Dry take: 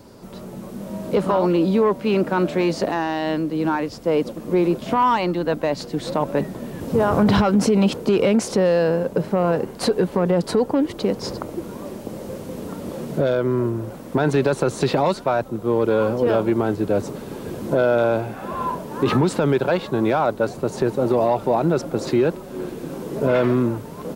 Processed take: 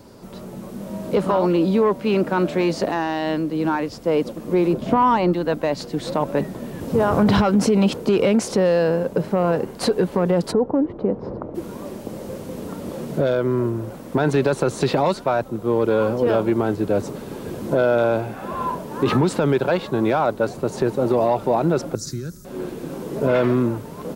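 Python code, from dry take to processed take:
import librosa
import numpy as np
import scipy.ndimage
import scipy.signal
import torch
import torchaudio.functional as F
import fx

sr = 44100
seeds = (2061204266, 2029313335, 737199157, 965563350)

y = fx.tilt_shelf(x, sr, db=5.0, hz=1100.0, at=(4.73, 5.33))
y = fx.lowpass(y, sr, hz=1000.0, slope=12, at=(10.51, 11.54), fade=0.02)
y = fx.curve_eq(y, sr, hz=(130.0, 390.0, 900.0, 1400.0, 2800.0, 5800.0, 8800.0), db=(0, -18, -29, -10, -21, 9, 4), at=(21.95, 22.45))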